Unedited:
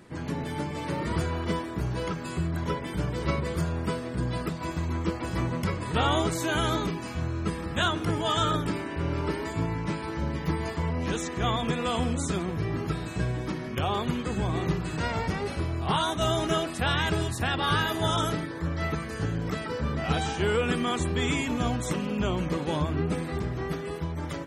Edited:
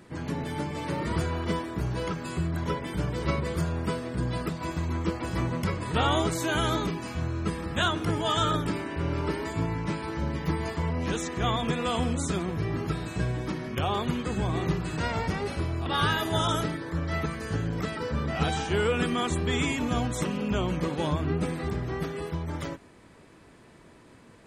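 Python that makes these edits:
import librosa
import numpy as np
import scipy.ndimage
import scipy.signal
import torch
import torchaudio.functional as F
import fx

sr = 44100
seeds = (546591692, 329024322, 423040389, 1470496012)

y = fx.edit(x, sr, fx.cut(start_s=15.86, length_s=1.69), tone=tone)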